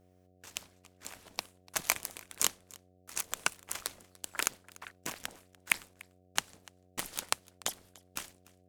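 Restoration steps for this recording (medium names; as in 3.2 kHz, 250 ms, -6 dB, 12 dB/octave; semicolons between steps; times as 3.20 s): de-hum 91.5 Hz, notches 8; inverse comb 293 ms -23 dB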